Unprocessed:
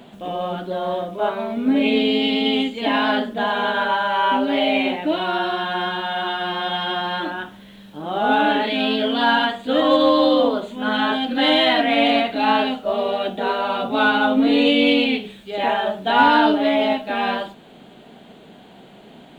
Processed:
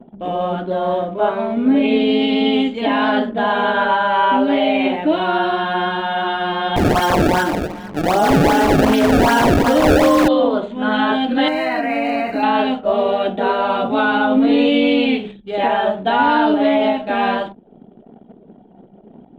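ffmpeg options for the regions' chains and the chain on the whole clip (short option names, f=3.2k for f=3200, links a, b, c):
-filter_complex "[0:a]asettb=1/sr,asplit=3[a][b][c];[a]atrim=end=6.764[d];[b]atrim=start=6.76:end=10.28,asetpts=PTS-STARTPTS,afade=t=in:d=0.004:c=qsin,afade=t=out:st=3.516:d=0.004:c=qsin,asplit=2[e][f];[f]adelay=235,lowpass=f=3.7k:p=1,volume=-5dB,asplit=2[g][h];[h]adelay=235,lowpass=f=3.7k:p=1,volume=0.21,asplit=2[i][j];[j]adelay=235,lowpass=f=3.7k:p=1,volume=0.21[k];[e][g][i][k]amix=inputs=4:normalize=0,atrim=end_sample=155232,acrusher=samples=25:mix=1:aa=0.000001:lfo=1:lforange=40:lforate=2.6,acontrast=74[l];[c]atrim=start=10.276[m];[d][l]acrossfade=d=0.004:c1=hsin:c2=qsin[n];[n][m]acrossfade=d=0.004:c1=qsin:c2=hsin,asettb=1/sr,asplit=3[o][p][q];[o]atrim=end=11.484[r];[p]atrim=start=11.48:end=12.43,asetpts=PTS-STARTPTS,afade=t=in:d=0.004:c=qsin,afade=t=out:st=0.946:d=0.004:c=qsin,asuperstop=centerf=3400:order=4:qfactor=1.9,highshelf=f=3.3k:g=11.5,acompressor=threshold=-20dB:ratio=6:attack=3.2:release=140:knee=1:detection=peak[s];[q]atrim=start=12.426[t];[r][s]acrossfade=d=0.004:c1=hsin:c2=qsin[u];[u][t]acrossfade=d=0.004:c1=qsin:c2=hsin,anlmdn=0.398,highshelf=f=3k:g=-11,alimiter=limit=-12dB:level=0:latency=1:release=85,volume=5.5dB"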